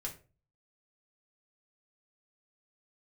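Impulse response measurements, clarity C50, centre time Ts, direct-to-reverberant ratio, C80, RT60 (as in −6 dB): 12.0 dB, 14 ms, −1.5 dB, 17.5 dB, 0.35 s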